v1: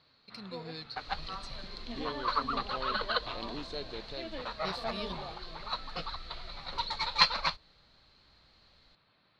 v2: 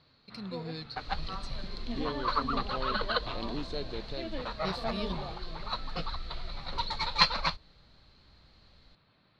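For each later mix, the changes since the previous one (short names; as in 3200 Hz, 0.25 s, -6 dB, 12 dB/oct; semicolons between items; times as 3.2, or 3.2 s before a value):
master: add low shelf 350 Hz +8 dB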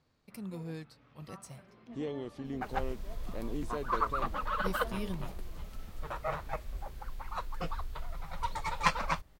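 first sound -10.5 dB; second sound: entry +1.65 s; master: remove synth low-pass 4200 Hz, resonance Q 11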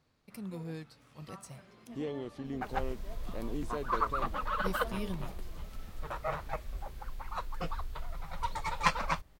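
first sound: remove air absorption 250 m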